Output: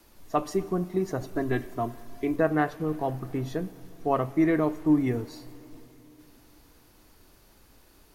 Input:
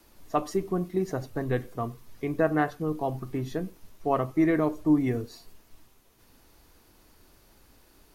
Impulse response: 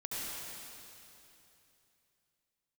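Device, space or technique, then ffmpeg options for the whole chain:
saturated reverb return: -filter_complex "[0:a]asettb=1/sr,asplit=3[a][b][c];[a]atrim=end=1.204[d];[b]atrim=start=1.2:end=2.36,asetpts=PTS-STARTPTS,afade=t=in:d=0.004:c=qsin,afade=t=out:st=1.156:d=0.004:c=qsin,aecho=1:1:3:0.76,atrim=end_sample=51156[e];[c]atrim=start=2.356[f];[d][e]acrossfade=d=0.004:c1=hsin:c2=qsin[g];[g][f]acrossfade=d=0.004:c1=qsin:c2=hsin,asplit=2[h][i];[1:a]atrim=start_sample=2205[j];[i][j]afir=irnorm=-1:irlink=0,asoftclip=type=tanh:threshold=-26.5dB,volume=-16.5dB[k];[h][k]amix=inputs=2:normalize=0"

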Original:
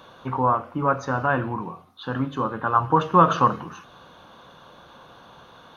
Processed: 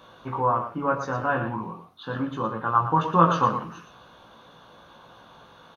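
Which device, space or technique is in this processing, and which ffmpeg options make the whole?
slapback doubling: -filter_complex "[0:a]asplit=3[a][b][c];[b]adelay=18,volume=-3dB[d];[c]adelay=117,volume=-8dB[e];[a][d][e]amix=inputs=3:normalize=0,volume=-4.5dB"

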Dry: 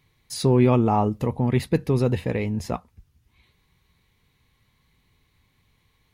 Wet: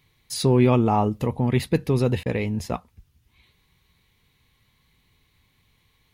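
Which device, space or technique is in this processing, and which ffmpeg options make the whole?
presence and air boost: -filter_complex "[0:a]asettb=1/sr,asplit=3[a][b][c];[a]atrim=end=2.234[d];[b]atrim=start=2.23:end=2.73,asetpts=PTS-STARTPTS,afade=t=in:d=0.004:c=qsin,afade=t=out:st=0.496:d=0.004:c=qsin,agate=range=-33dB:threshold=-29dB:ratio=3:detection=peak[e];[c]atrim=start=2.726[f];[d][e]acrossfade=d=0.004:c1=hsin:c2=qsin[g];[g][f]acrossfade=d=0.004:c1=qsin:c2=hsin,equalizer=f=3.2k:t=o:w=1.1:g=3.5,highshelf=f=9.7k:g=5"

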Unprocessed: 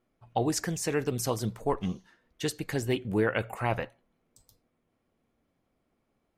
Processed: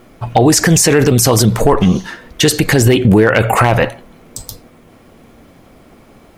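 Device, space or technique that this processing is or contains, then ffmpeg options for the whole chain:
loud club master: -af "acompressor=threshold=-33dB:ratio=2,asoftclip=type=hard:threshold=-24dB,alimiter=level_in=33.5dB:limit=-1dB:release=50:level=0:latency=1,volume=-1dB"

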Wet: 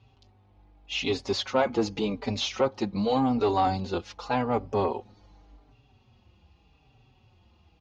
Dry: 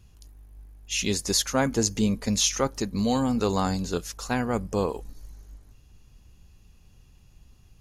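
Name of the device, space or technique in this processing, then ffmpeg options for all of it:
barber-pole flanger into a guitar amplifier: -filter_complex "[0:a]asplit=2[a][b];[b]adelay=4.7,afreqshift=-0.86[c];[a][c]amix=inputs=2:normalize=1,asoftclip=type=tanh:threshold=-20.5dB,highpass=100,equalizer=f=170:t=q:w=4:g=-9,equalizer=f=800:t=q:w=4:g=8,equalizer=f=1.7k:t=q:w=4:g=-7,lowpass=f=4k:w=0.5412,lowpass=f=4k:w=1.3066,volume=5dB"

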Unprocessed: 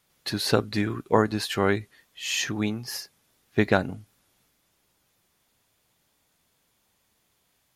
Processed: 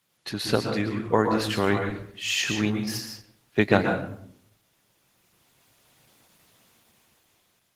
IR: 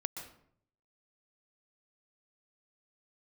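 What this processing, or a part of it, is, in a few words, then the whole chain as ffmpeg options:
far-field microphone of a smart speaker: -filter_complex "[0:a]asplit=3[a][b][c];[a]afade=t=out:st=2.93:d=0.02[d];[b]highpass=f=83:p=1,afade=t=in:st=2.93:d=0.02,afade=t=out:st=3.92:d=0.02[e];[c]afade=t=in:st=3.92:d=0.02[f];[d][e][f]amix=inputs=3:normalize=0,equalizer=f=2.8k:w=2.3:g=3[g];[1:a]atrim=start_sample=2205[h];[g][h]afir=irnorm=-1:irlink=0,highpass=f=83:w=0.5412,highpass=f=83:w=1.3066,dynaudnorm=f=510:g=7:m=15.5dB,volume=-1dB" -ar 48000 -c:a libopus -b:a 16k

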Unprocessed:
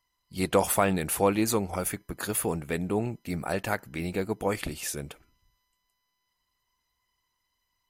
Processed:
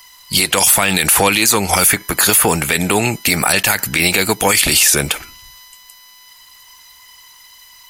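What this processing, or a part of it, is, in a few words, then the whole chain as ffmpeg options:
mastering chain: -filter_complex "[0:a]equalizer=f=870:t=o:w=0.33:g=3.5,acrossover=split=320|2100[a][b][c];[a]acompressor=threshold=-37dB:ratio=4[d];[b]acompressor=threshold=-37dB:ratio=4[e];[c]acompressor=threshold=-37dB:ratio=4[f];[d][e][f]amix=inputs=3:normalize=0,acompressor=threshold=-36dB:ratio=1.5,asoftclip=type=tanh:threshold=-22dB,tiltshelf=f=1.1k:g=-9,asoftclip=type=hard:threshold=-20dB,alimiter=level_in=30dB:limit=-1dB:release=50:level=0:latency=1,volume=-1dB"

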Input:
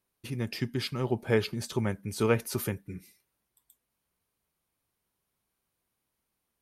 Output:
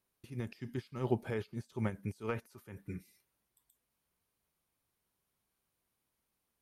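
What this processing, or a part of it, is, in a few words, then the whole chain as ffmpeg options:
de-esser from a sidechain: -filter_complex "[0:a]asettb=1/sr,asplit=3[a][b][c];[a]atrim=end=2.294[d];[b]atrim=start=2.29:end=2.97,asetpts=PTS-STARTPTS,afade=t=in:d=0.004:c=qsin,afade=t=out:st=0.676:d=0.004:c=qsin,equalizer=f=1.2k:w=0.94:g=5[e];[c]atrim=start=2.966[f];[d][e]acrossfade=d=0.004:c1=hsin:c2=qsin[g];[g][f]acrossfade=d=0.004:c1=qsin:c2=hsin,asplit=2[h][i];[i]highpass=f=4.6k:w=0.5412,highpass=f=4.6k:w=1.3066,apad=whole_len=291583[j];[h][j]sidechaincompress=threshold=-60dB:ratio=20:attack=2.5:release=76,volume=-2dB"

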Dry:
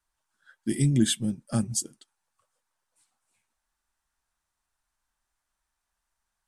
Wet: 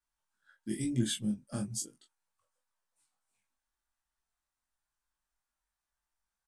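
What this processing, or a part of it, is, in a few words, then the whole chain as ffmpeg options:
double-tracked vocal: -filter_complex "[0:a]asplit=2[a][b];[b]adelay=24,volume=-5dB[c];[a][c]amix=inputs=2:normalize=0,flanger=delay=17:depth=3.4:speed=1,volume=-6dB"

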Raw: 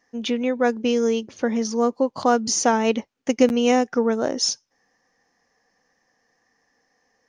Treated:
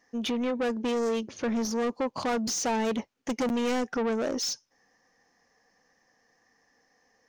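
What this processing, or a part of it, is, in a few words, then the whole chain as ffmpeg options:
saturation between pre-emphasis and de-emphasis: -af "highshelf=f=6.2k:g=8,asoftclip=type=tanh:threshold=-24.5dB,highshelf=f=6.2k:g=-8"

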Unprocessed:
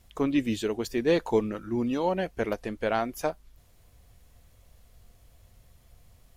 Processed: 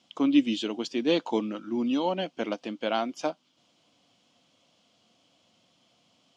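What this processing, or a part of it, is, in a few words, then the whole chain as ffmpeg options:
television speaker: -af "highpass=f=190:w=0.5412,highpass=f=190:w=1.3066,equalizer=f=290:t=q:w=4:g=6,equalizer=f=420:t=q:w=4:g=-8,equalizer=f=1.8k:t=q:w=4:g=-9,equalizer=f=3.1k:t=q:w=4:g=10,equalizer=f=5k:t=q:w=4:g=3,lowpass=f=6.6k:w=0.5412,lowpass=f=6.6k:w=1.3066"

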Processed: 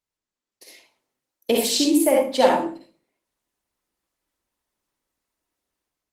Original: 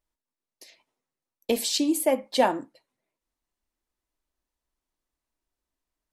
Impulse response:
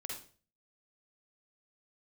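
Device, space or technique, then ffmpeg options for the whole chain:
far-field microphone of a smart speaker: -filter_complex "[0:a]asettb=1/sr,asplit=3[a][b][c];[a]atrim=end=1.624[d];[b]atrim=start=1.62:end=2.45,asetpts=PTS-STARTPTS,afade=t=in:d=0.004:c=qsin,afade=t=out:st=0.826:d=0.004:c=qsin,highshelf=f=12k:g=-3[e];[c]atrim=start=2.446[f];[d][e]acrossfade=d=0.004:c1=hsin:c2=qsin[g];[g][f]acrossfade=d=0.004:c1=qsin:c2=hsin[h];[1:a]atrim=start_sample=2205[i];[h][i]afir=irnorm=-1:irlink=0,highpass=f=130:p=1,dynaudnorm=f=210:g=5:m=9.5dB" -ar 48000 -c:a libopus -b:a 20k

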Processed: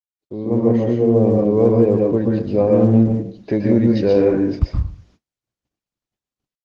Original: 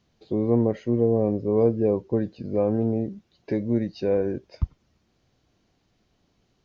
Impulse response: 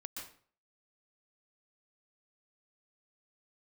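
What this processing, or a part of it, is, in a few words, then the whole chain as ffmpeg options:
speakerphone in a meeting room: -filter_complex "[1:a]atrim=start_sample=2205[a];[0:a][a]afir=irnorm=-1:irlink=0,dynaudnorm=f=360:g=3:m=15dB,agate=range=-43dB:threshold=-50dB:ratio=16:detection=peak" -ar 48000 -c:a libopus -b:a 16k

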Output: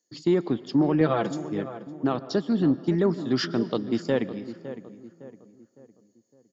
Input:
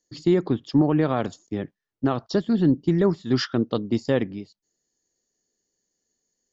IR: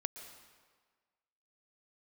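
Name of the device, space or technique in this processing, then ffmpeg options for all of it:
saturated reverb return: -filter_complex "[0:a]highpass=150,asettb=1/sr,asplit=3[a][b][c];[a]atrim=end=1.004[d];[b]atrim=start=1:end=1.42,asetpts=PTS-STARTPTS,afade=t=in:d=0.004:c=qsin,afade=t=out:st=0.416:d=0.004:c=qsin,aecho=1:1:6:0.93,atrim=end_sample=18522[e];[c]atrim=start=1.416[f];[d][e]acrossfade=d=0.004:c1=hsin:c2=qsin[g];[g][f]acrossfade=d=0.004:c1=qsin:c2=hsin,asplit=2[h][i];[i]adelay=559,lowpass=f=1.6k:p=1,volume=-13dB,asplit=2[j][k];[k]adelay=559,lowpass=f=1.6k:p=1,volume=0.43,asplit=2[l][m];[m]adelay=559,lowpass=f=1.6k:p=1,volume=0.43,asplit=2[n][o];[o]adelay=559,lowpass=f=1.6k:p=1,volume=0.43[p];[h][j][l][n][p]amix=inputs=5:normalize=0,asplit=2[q][r];[1:a]atrim=start_sample=2205[s];[r][s]afir=irnorm=-1:irlink=0,asoftclip=type=tanh:threshold=-17dB,volume=-5.5dB[t];[q][t]amix=inputs=2:normalize=0,volume=-4.5dB"

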